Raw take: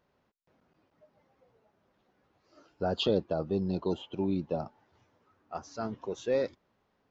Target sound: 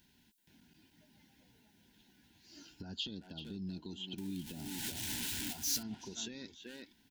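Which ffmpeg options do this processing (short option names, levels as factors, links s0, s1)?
-filter_complex "[0:a]asettb=1/sr,asplit=3[s0][s1][s2];[s0]atrim=end=4.184[s3];[s1]atrim=start=4.18:end=5.83,asetpts=PTS-STARTPTS,afade=t=in:d=0.004:c=qsin,afade=t=out:st=1.646:d=0.004:c=qsin,aeval=exprs='val(0)+0.5*0.01*sgn(val(0))':c=same[s4];[s2]atrim=start=5.826[s5];[s3][s4]acrossfade=d=0.004:c1=hsin:c2=qsin[s6];[s6][s5]acrossfade=d=0.004:c1=qsin:c2=hsin,asplit=2[s7][s8];[s8]adelay=380,highpass=300,lowpass=3400,asoftclip=type=hard:threshold=0.0596,volume=0.355[s9];[s7][s9]amix=inputs=2:normalize=0,acompressor=threshold=0.00794:ratio=8,equalizer=f=570:t=o:w=0.99:g=-14,alimiter=level_in=7.5:limit=0.0631:level=0:latency=1:release=124,volume=0.133,asuperstop=centerf=1200:order=8:qfactor=3.1,aexciter=amount=1.4:drive=8.9:freq=2900,equalizer=f=125:t=o:w=1:g=-4,equalizer=f=250:t=o:w=1:g=6,equalizer=f=500:t=o:w=1:g=-9,equalizer=f=1000:t=o:w=1:g=-3,volume=2.37"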